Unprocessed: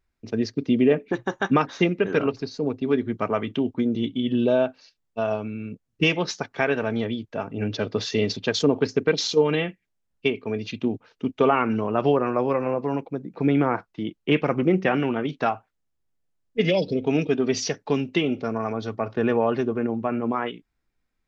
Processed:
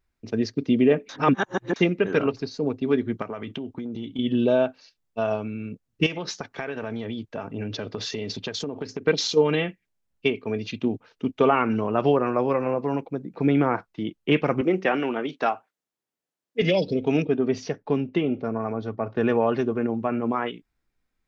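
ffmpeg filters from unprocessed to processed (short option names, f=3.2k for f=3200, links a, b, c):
-filter_complex "[0:a]asettb=1/sr,asplit=3[a][b][c];[a]atrim=end=3.224[d];[b]atrim=start=3.22:end=4.19,asetpts=PTS-STARTPTS,afade=t=in:d=0.004:c=qsin,afade=t=out:st=0.966:d=0.004:c=qsin,acompressor=threshold=-28dB:ratio=12:attack=3.2:release=140:knee=1:detection=peak[e];[c]atrim=start=4.186[f];[d][e]acrossfade=d=0.004:c1=hsin:c2=qsin[g];[g][f]acrossfade=d=0.004:c1=qsin:c2=hsin,asettb=1/sr,asplit=3[h][i][j];[h]atrim=end=6.064[k];[i]atrim=start=6.06:end=9.07,asetpts=PTS-STARTPTS,afade=t=in:d=0.004:c=qsin,afade=t=out:st=3.006:d=0.004:c=qsin,acompressor=threshold=-26dB:ratio=12:attack=3.2:release=140:knee=1:detection=peak[l];[j]atrim=start=9.066[m];[k][l]acrossfade=d=0.004:c1=hsin:c2=qsin[n];[n][m]acrossfade=d=0.004:c1=qsin:c2=hsin,asettb=1/sr,asplit=3[o][p][q];[o]atrim=end=14.614[r];[p]atrim=start=14.61:end=16.62,asetpts=PTS-STARTPTS,afade=t=in:d=0.004:c=qsin,afade=t=out:st=2.006:d=0.004:c=qsin,highpass=270[s];[q]atrim=start=16.616[t];[r][s]acrossfade=d=0.004:c1=hsin:c2=qsin[u];[u][t]acrossfade=d=0.004:c1=qsin:c2=hsin,asettb=1/sr,asplit=3[v][w][x];[v]atrim=end=17.224[y];[w]atrim=start=17.22:end=19.16,asetpts=PTS-STARTPTS,afade=t=in:d=0.004:c=qsin,afade=t=out:st=1.936:d=0.004:c=qsin,lowpass=f=1.2k:p=1[z];[x]atrim=start=19.156[aa];[y][z]acrossfade=d=0.004:c1=hsin:c2=qsin[ab];[ab][aa]acrossfade=d=0.004:c1=qsin:c2=hsin,asplit=3[ac][ad][ae];[ac]atrim=end=1.092[af];[ad]atrim=start=1.088:end=1.762,asetpts=PTS-STARTPTS,areverse[ag];[ae]atrim=start=1.758[ah];[af][ag]acrossfade=d=0.004:c1=hsin:c2=hsin[ai];[ai][ah]acrossfade=d=0.004:c1=hsin:c2=hsin"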